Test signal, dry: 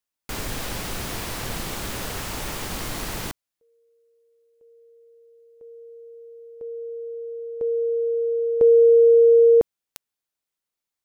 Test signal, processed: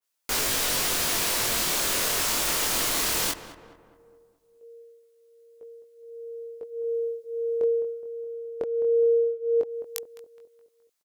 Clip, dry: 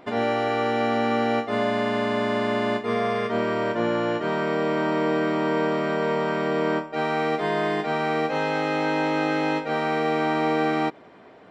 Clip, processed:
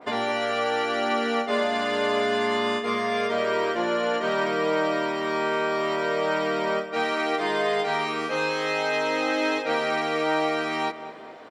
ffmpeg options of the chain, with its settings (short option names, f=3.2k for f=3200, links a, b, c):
-filter_complex "[0:a]bass=f=250:g=-12,treble=f=4k:g=4,bandreject=f=810:w=15,acompressor=threshold=-27dB:ratio=5:attack=17:release=475:knee=6:detection=peak,flanger=delay=18:depth=6.9:speed=0.18,asplit=2[a][b];[b]adelay=210,lowpass=f=1.8k:p=1,volume=-11.5dB,asplit=2[c][d];[d]adelay=210,lowpass=f=1.8k:p=1,volume=0.52,asplit=2[e][f];[f]adelay=210,lowpass=f=1.8k:p=1,volume=0.52,asplit=2[g][h];[h]adelay=210,lowpass=f=1.8k:p=1,volume=0.52,asplit=2[i][j];[j]adelay=210,lowpass=f=1.8k:p=1,volume=0.52,asplit=2[k][l];[l]adelay=210,lowpass=f=1.8k:p=1,volume=0.52[m];[a][c][e][g][i][k][m]amix=inputs=7:normalize=0,adynamicequalizer=threshold=0.00447:dfrequency=2200:dqfactor=0.7:tfrequency=2200:tqfactor=0.7:attack=5:release=100:ratio=0.375:range=1.5:mode=boostabove:tftype=highshelf,volume=8dB"